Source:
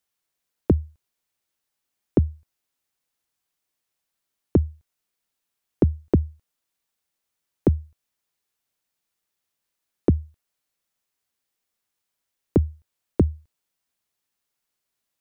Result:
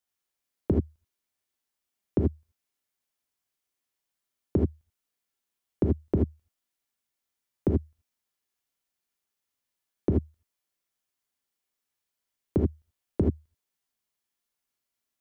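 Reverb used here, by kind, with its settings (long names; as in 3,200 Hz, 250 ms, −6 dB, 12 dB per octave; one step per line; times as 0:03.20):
reverb whose tail is shaped and stops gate 100 ms rising, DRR 0.5 dB
level −7 dB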